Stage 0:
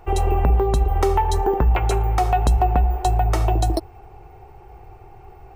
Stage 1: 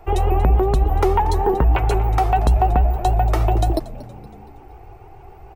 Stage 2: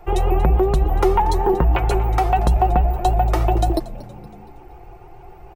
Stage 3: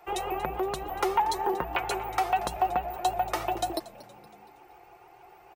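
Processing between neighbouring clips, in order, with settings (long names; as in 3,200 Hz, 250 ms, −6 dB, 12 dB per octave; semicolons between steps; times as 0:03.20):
dynamic equaliser 7,200 Hz, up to −7 dB, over −48 dBFS, Q 0.81; echo with shifted repeats 234 ms, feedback 48%, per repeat −87 Hz, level −17 dB; pitch modulation by a square or saw wave saw up 6.7 Hz, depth 100 cents; level +1.5 dB
comb filter 5.7 ms, depth 40%
high-pass filter 1,200 Hz 6 dB per octave; level −1.5 dB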